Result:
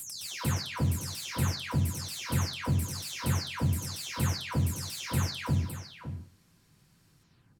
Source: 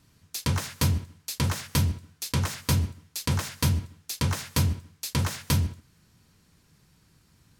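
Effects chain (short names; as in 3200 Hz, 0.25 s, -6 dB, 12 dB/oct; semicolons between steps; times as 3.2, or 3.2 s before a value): spectral delay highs early, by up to 0.368 s; echo 0.562 s -11 dB; slew limiter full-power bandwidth 180 Hz; gain -2 dB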